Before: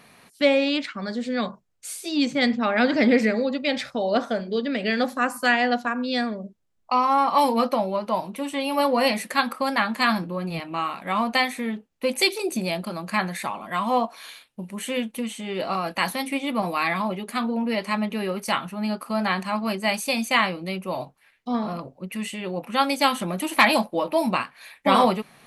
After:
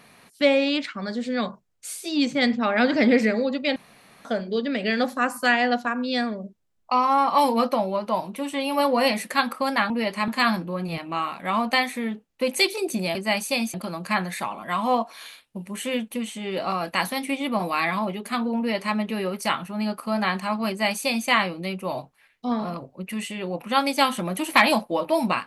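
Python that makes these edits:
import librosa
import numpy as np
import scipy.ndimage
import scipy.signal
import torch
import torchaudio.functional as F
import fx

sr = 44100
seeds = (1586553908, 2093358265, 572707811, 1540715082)

y = fx.edit(x, sr, fx.room_tone_fill(start_s=3.76, length_s=0.49),
    fx.duplicate(start_s=17.61, length_s=0.38, to_s=9.9),
    fx.duplicate(start_s=19.72, length_s=0.59, to_s=12.77), tone=tone)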